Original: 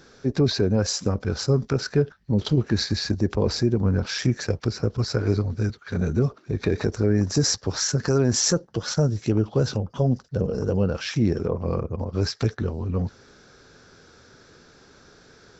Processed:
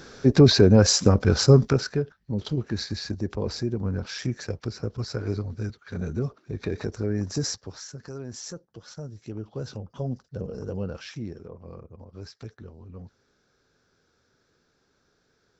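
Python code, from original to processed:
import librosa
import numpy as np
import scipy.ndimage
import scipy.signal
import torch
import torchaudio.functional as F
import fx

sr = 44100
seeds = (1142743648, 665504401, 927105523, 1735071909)

y = fx.gain(x, sr, db=fx.line((1.6, 6.0), (2.03, -6.5), (7.45, -6.5), (7.86, -17.0), (9.03, -17.0), (9.96, -9.0), (10.98, -9.0), (11.41, -17.0)))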